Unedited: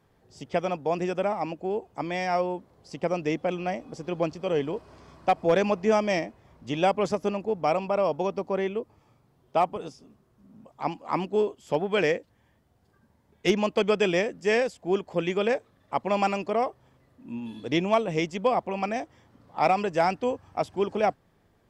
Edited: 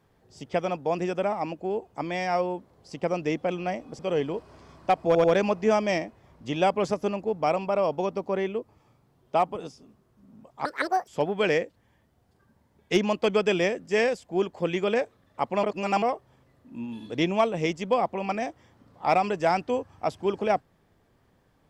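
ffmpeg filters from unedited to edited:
ffmpeg -i in.wav -filter_complex "[0:a]asplit=8[link_01][link_02][link_03][link_04][link_05][link_06][link_07][link_08];[link_01]atrim=end=3.992[link_09];[link_02]atrim=start=4.378:end=5.542[link_10];[link_03]atrim=start=5.448:end=5.542[link_11];[link_04]atrim=start=5.448:end=10.864[link_12];[link_05]atrim=start=10.86:end=11.61,asetpts=PTS-STARTPTS,asetrate=78057,aresample=44100,atrim=end_sample=18686,asetpts=PTS-STARTPTS[link_13];[link_06]atrim=start=11.606:end=16.172[link_14];[link_07]atrim=start=16.168:end=16.562,asetpts=PTS-STARTPTS,areverse[link_15];[link_08]atrim=start=16.558[link_16];[link_09][link_10]acrossfade=duration=0.004:curve1=hsin:curve2=hsin[link_17];[link_17][link_11]acrossfade=duration=0.004:curve1=hsin:curve2=hsin[link_18];[link_18][link_12]acrossfade=duration=0.004:curve1=hsin:curve2=hsin[link_19];[link_19][link_13]acrossfade=duration=0.004:curve1=hsin:curve2=hsin[link_20];[link_20][link_14]acrossfade=duration=0.004:curve1=hsin:curve2=hsin[link_21];[link_21][link_15]acrossfade=duration=0.004:curve1=hsin:curve2=hsin[link_22];[link_22][link_16]acrossfade=duration=0.004:curve1=hsin:curve2=hsin" out.wav

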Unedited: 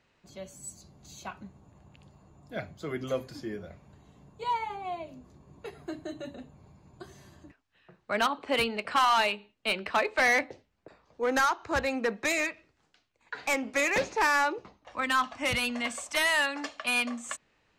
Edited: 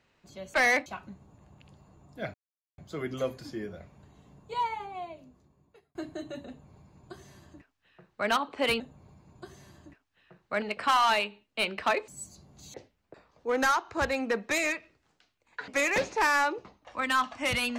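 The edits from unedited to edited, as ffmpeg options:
ffmpeg -i in.wav -filter_complex "[0:a]asplit=10[link_01][link_02][link_03][link_04][link_05][link_06][link_07][link_08][link_09][link_10];[link_01]atrim=end=0.542[link_11];[link_02]atrim=start=10.158:end=10.482[link_12];[link_03]atrim=start=1.198:end=2.68,asetpts=PTS-STARTPTS,afade=type=out:start_time=1.478:duration=0.004:curve=hsin,apad=pad_dur=0.44[link_13];[link_04]atrim=start=2.68:end=5.85,asetpts=PTS-STARTPTS,afade=type=in:duration=0.004:curve=hsin,afade=type=out:start_time=1.81:duration=1.36[link_14];[link_05]atrim=start=5.85:end=8.702,asetpts=PTS-STARTPTS,afade=type=in:duration=0.004:curve=hsin[link_15];[link_06]atrim=start=6.378:end=8.202[link_16];[link_07]atrim=start=8.698:end=10.162[link_17];[link_08]atrim=start=0.538:end=1.202[link_18];[link_09]atrim=start=10.478:end=13.422[link_19];[link_10]atrim=start=13.678[link_20];[link_11][link_12]acrossfade=duration=0.004:curve1=hsin:curve2=hsin[link_21];[link_13][link_14][link_15]concat=n=3:v=0:a=1[link_22];[link_21][link_22]acrossfade=duration=0.004:curve1=hsin:curve2=hsin[link_23];[link_23][link_16]acrossfade=duration=0.004:curve1=hsin:curve2=hsin[link_24];[link_24][link_17]acrossfade=duration=0.004:curve1=hsin:curve2=hsin[link_25];[link_25][link_18]acrossfade=duration=0.004:curve1=hsin:curve2=hsin[link_26];[link_26][link_19]acrossfade=duration=0.004:curve1=hsin:curve2=hsin[link_27];[link_27][link_20]acrossfade=duration=0.004:curve1=hsin:curve2=hsin" out.wav

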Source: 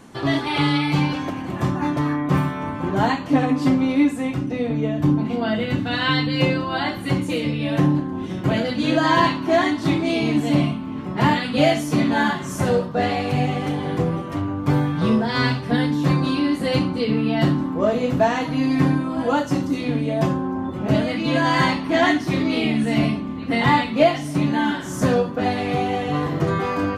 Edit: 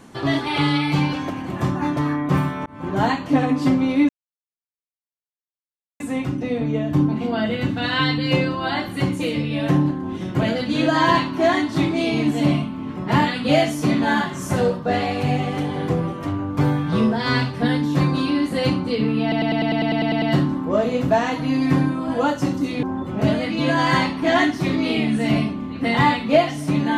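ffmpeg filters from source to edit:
ffmpeg -i in.wav -filter_complex "[0:a]asplit=14[link_01][link_02][link_03][link_04][link_05][link_06][link_07][link_08][link_09][link_10][link_11][link_12][link_13][link_14];[link_01]atrim=end=2.66,asetpts=PTS-STARTPTS,afade=type=out:start_time=2.656:duration=0.004:curve=hsin[link_15];[link_02]atrim=start=2.66:end=4.09,asetpts=PTS-STARTPTS,afade=type=in:duration=0.43:curve=qsin,afade=type=out:start_time=1.426:duration=0.004:curve=hsin,apad=pad_dur=1.91[link_16];[link_03]atrim=start=4.09:end=17.412,asetpts=PTS-STARTPTS,afade=type=in:duration=0.004:curve=hsin[link_17];[link_04]atrim=start=17.308:end=17.412[link_18];[link_05]atrim=start=17.308:end=17.412[link_19];[link_06]atrim=start=17.308:end=17.412[link_20];[link_07]atrim=start=17.308:end=17.412[link_21];[link_08]atrim=start=17.308:end=17.412[link_22];[link_09]atrim=start=17.308:end=17.412[link_23];[link_10]atrim=start=17.308:end=17.412[link_24];[link_11]atrim=start=17.308:end=17.412[link_25];[link_12]atrim=start=17.308:end=17.412[link_26];[link_13]atrim=start=17.308:end=19.922[link_27];[link_14]atrim=start=20.498[link_28];[link_15][link_16][link_17]concat=n=3:v=0:a=1[link_29];[link_29][link_18]acrossfade=duration=0.004:curve1=hsin:curve2=hsin[link_30];[link_30][link_19]acrossfade=duration=0.004:curve1=hsin:curve2=hsin[link_31];[link_31][link_20]acrossfade=duration=0.004:curve1=hsin:curve2=hsin[link_32];[link_32][link_21]acrossfade=duration=0.004:curve1=hsin:curve2=hsin[link_33];[link_33][link_22]acrossfade=duration=0.004:curve1=hsin:curve2=hsin[link_34];[link_34][link_23]acrossfade=duration=0.004:curve1=hsin:curve2=hsin[link_35];[link_35][link_24]acrossfade=duration=0.004:curve1=hsin:curve2=hsin[link_36];[link_36][link_25]acrossfade=duration=0.004:curve1=hsin:curve2=hsin[link_37];[link_37][link_26]acrossfade=duration=0.004:curve1=hsin:curve2=hsin[link_38];[link_38][link_27]acrossfade=duration=0.004:curve1=hsin:curve2=hsin[link_39];[link_39][link_28]acrossfade=duration=0.004:curve1=hsin:curve2=hsin" out.wav

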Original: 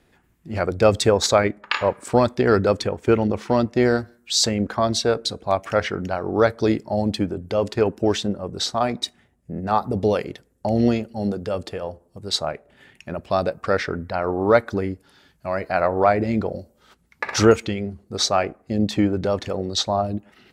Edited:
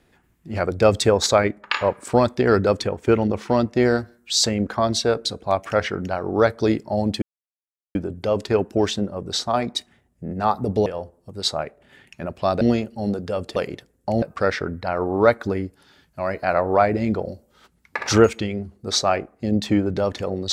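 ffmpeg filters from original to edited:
ffmpeg -i in.wav -filter_complex "[0:a]asplit=6[link_01][link_02][link_03][link_04][link_05][link_06];[link_01]atrim=end=7.22,asetpts=PTS-STARTPTS,afade=type=out:start_time=7.216:duration=0.004:curve=hsin,apad=pad_dur=0.73[link_07];[link_02]atrim=start=7.22:end=10.132,asetpts=PTS-STARTPTS,afade=type=in:duration=0.004:curve=hsin[link_08];[link_03]atrim=start=11.738:end=13.492[link_09];[link_04]atrim=start=10.788:end=11.742[link_10];[link_05]atrim=start=10.128:end=10.792[link_11];[link_06]atrim=start=13.488[link_12];[link_07][link_08]concat=n=2:v=0:a=1[link_13];[link_13][link_09]acrossfade=duration=0.004:curve1=hsin:curve2=hsin[link_14];[link_14][link_10]acrossfade=duration=0.004:curve1=hsin:curve2=hsin[link_15];[link_15][link_11]acrossfade=duration=0.004:curve1=hsin:curve2=hsin[link_16];[link_16][link_12]acrossfade=duration=0.004:curve1=hsin:curve2=hsin" out.wav

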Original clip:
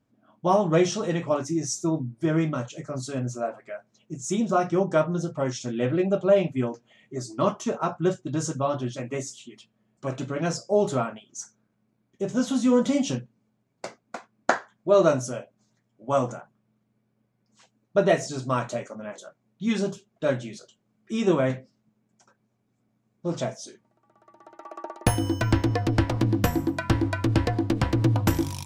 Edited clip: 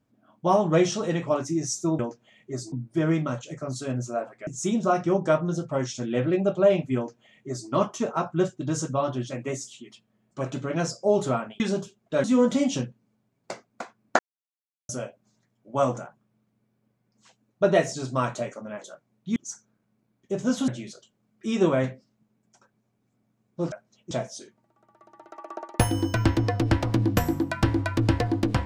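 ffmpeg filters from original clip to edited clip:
ffmpeg -i in.wav -filter_complex "[0:a]asplit=12[link_01][link_02][link_03][link_04][link_05][link_06][link_07][link_08][link_09][link_10][link_11][link_12];[link_01]atrim=end=1.992[link_13];[link_02]atrim=start=6.618:end=7.352[link_14];[link_03]atrim=start=1.988:end=3.742[link_15];[link_04]atrim=start=4.128:end=11.262[link_16];[link_05]atrim=start=19.698:end=20.342[link_17];[link_06]atrim=start=12.578:end=14.53,asetpts=PTS-STARTPTS,afade=type=out:start_time=1.948:duration=0.004:curve=hsin[link_18];[link_07]atrim=start=14.53:end=15.23,asetpts=PTS-STARTPTS,volume=0[link_19];[link_08]atrim=start=15.23:end=19.702,asetpts=PTS-STARTPTS,afade=type=in:duration=0.004:curve=hsin[link_20];[link_09]atrim=start=11.258:end=12.582[link_21];[link_10]atrim=start=20.338:end=23.382[link_22];[link_11]atrim=start=3.738:end=4.132[link_23];[link_12]atrim=start=23.378[link_24];[link_13][link_14]acrossfade=duration=0.004:curve1=hsin:curve2=hsin[link_25];[link_25][link_15]acrossfade=duration=0.004:curve1=hsin:curve2=hsin[link_26];[link_26][link_16]acrossfade=duration=0.004:curve1=hsin:curve2=hsin[link_27];[link_27][link_17]acrossfade=duration=0.004:curve1=hsin:curve2=hsin[link_28];[link_18][link_19][link_20]concat=n=3:v=0:a=1[link_29];[link_28][link_29]acrossfade=duration=0.004:curve1=hsin:curve2=hsin[link_30];[link_30][link_21]acrossfade=duration=0.004:curve1=hsin:curve2=hsin[link_31];[link_31][link_22]acrossfade=duration=0.004:curve1=hsin:curve2=hsin[link_32];[link_32][link_23]acrossfade=duration=0.004:curve1=hsin:curve2=hsin[link_33];[link_33][link_24]acrossfade=duration=0.004:curve1=hsin:curve2=hsin" out.wav

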